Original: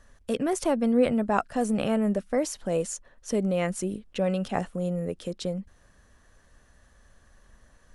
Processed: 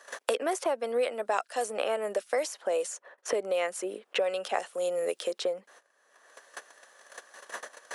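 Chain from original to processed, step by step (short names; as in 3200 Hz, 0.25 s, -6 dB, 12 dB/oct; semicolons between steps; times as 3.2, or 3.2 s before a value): gate -52 dBFS, range -23 dB; HPF 450 Hz 24 dB/oct; three-band squash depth 100%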